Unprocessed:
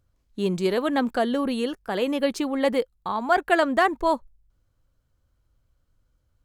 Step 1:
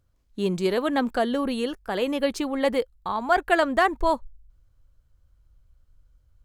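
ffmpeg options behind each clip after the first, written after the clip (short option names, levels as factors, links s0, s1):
-af "asubboost=boost=3.5:cutoff=97"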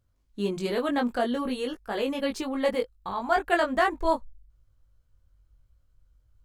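-af "flanger=delay=18.5:depth=2.2:speed=0.47"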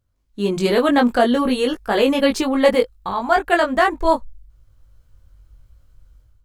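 -af "dynaudnorm=f=310:g=3:m=4.47"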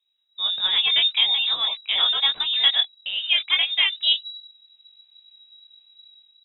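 -af "lowpass=f=3300:t=q:w=0.5098,lowpass=f=3300:t=q:w=0.6013,lowpass=f=3300:t=q:w=0.9,lowpass=f=3300:t=q:w=2.563,afreqshift=-3900,volume=0.596"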